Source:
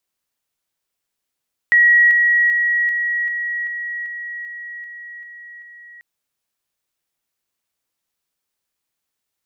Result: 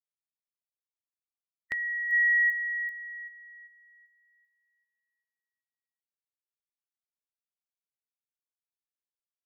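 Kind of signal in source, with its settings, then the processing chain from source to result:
level ladder 1910 Hz -8.5 dBFS, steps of -3 dB, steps 11, 0.39 s 0.00 s
per-bin expansion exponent 3; bell 1500 Hz -7 dB 1.8 oct; negative-ratio compressor -27 dBFS, ratio -1

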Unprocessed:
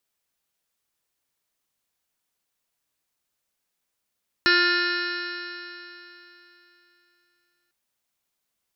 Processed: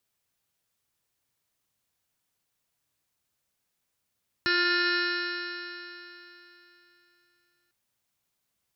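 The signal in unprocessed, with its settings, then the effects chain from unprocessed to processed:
stretched partials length 3.25 s, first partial 349 Hz, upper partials -19/-13/4/5/-10/-5/-7/-15/-13.5/0.5/-5.5/-12.5/-3.5 dB, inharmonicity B 0.00099, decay 3.27 s, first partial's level -24 dB
limiter -16.5 dBFS; bell 110 Hz +8.5 dB 1.3 oct

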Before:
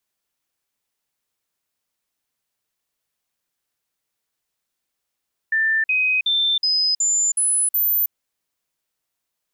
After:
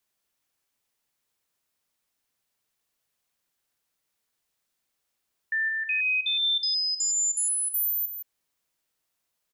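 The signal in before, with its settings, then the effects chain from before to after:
stepped sine 1780 Hz up, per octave 2, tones 7, 0.32 s, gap 0.05 s -16 dBFS
limiter -23 dBFS; echo 0.166 s -10.5 dB

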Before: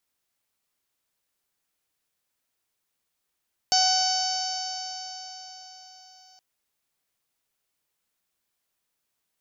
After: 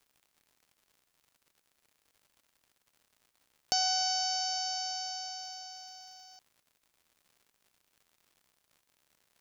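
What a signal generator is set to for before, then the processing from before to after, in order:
stretched partials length 2.67 s, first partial 746 Hz, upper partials -12.5/-18/-10/-16/-0.5/-1/-4/-13.5 dB, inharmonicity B 0.0013, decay 4.48 s, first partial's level -22 dB
compressor 2:1, threshold -32 dBFS; crackle 150/s -53 dBFS

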